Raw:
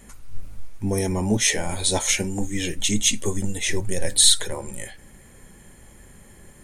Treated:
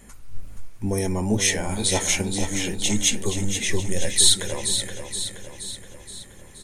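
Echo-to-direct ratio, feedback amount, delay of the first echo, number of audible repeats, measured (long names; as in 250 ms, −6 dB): −6.5 dB, 55%, 474 ms, 6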